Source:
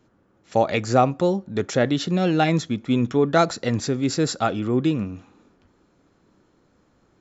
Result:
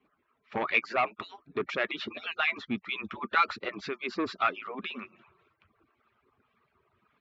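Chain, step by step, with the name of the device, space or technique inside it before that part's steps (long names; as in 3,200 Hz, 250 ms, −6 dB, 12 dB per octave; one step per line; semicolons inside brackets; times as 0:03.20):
harmonic-percussive split with one part muted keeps percussive
guitar amplifier with harmonic tremolo (two-band tremolo in antiphase 1.9 Hz, depth 50%, crossover 1,100 Hz; soft clipping −19 dBFS, distortion −11 dB; loudspeaker in its box 100–3,600 Hz, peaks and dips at 160 Hz −9 dB, 290 Hz −6 dB, 510 Hz −8 dB, 760 Hz −5 dB, 1,200 Hz +8 dB, 2,400 Hz +9 dB)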